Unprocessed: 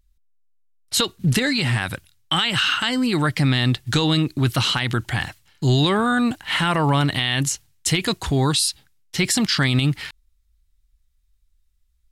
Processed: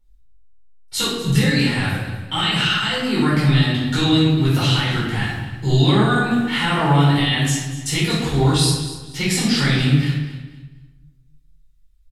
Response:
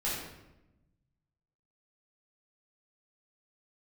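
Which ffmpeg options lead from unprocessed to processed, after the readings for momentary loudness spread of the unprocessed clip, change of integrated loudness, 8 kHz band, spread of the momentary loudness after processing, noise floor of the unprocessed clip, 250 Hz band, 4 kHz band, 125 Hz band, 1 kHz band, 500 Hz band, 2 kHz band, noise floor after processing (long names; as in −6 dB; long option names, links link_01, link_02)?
7 LU, +2.0 dB, −1.0 dB, 9 LU, −65 dBFS, +3.5 dB, +1.0 dB, +4.5 dB, +1.5 dB, +2.5 dB, +1.5 dB, −52 dBFS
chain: -filter_complex "[0:a]aecho=1:1:240|480|720:0.2|0.0599|0.018[link_01];[1:a]atrim=start_sample=2205[link_02];[link_01][link_02]afir=irnorm=-1:irlink=0,volume=-5dB"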